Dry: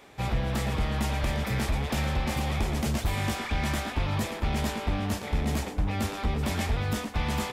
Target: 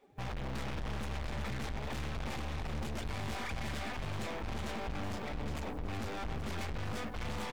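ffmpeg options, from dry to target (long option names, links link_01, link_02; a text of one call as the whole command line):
ffmpeg -i in.wav -af "afftdn=noise_reduction=21:noise_floor=-43,highshelf=frequency=8600:gain=-10,areverse,acompressor=mode=upward:threshold=-34dB:ratio=2.5,areverse,acrusher=bits=6:mode=log:mix=0:aa=0.000001,aeval=exprs='(tanh(112*val(0)+0.65)-tanh(0.65))/112':channel_layout=same,aecho=1:1:378:0.316,volume=3dB" out.wav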